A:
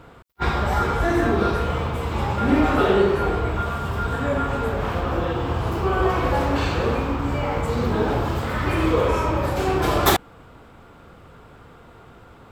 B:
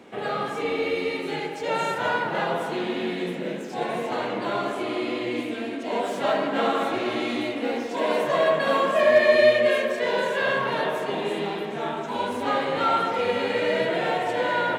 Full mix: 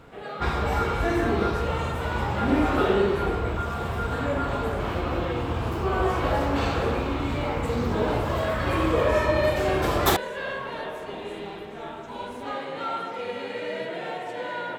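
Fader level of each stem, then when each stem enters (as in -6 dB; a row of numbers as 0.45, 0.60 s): -4.0, -8.0 dB; 0.00, 0.00 s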